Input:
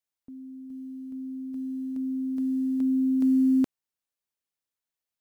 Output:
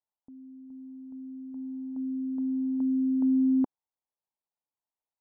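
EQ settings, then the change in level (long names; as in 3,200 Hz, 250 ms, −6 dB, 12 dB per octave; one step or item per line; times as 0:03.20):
dynamic equaliser 280 Hz, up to +3 dB, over −32 dBFS, Q 1.5
low-pass with resonance 880 Hz, resonance Q 3.4
−6.0 dB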